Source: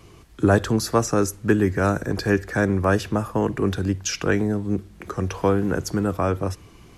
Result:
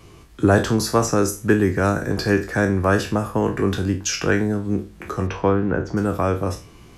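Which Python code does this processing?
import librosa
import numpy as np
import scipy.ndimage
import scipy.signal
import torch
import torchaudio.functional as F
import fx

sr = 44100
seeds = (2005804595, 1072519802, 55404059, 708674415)

y = fx.spec_trails(x, sr, decay_s=0.32)
y = fx.lowpass(y, sr, hz=fx.line((5.26, 3900.0), (5.96, 1900.0)), slope=12, at=(5.26, 5.96), fade=0.02)
y = y * 10.0 ** (1.0 / 20.0)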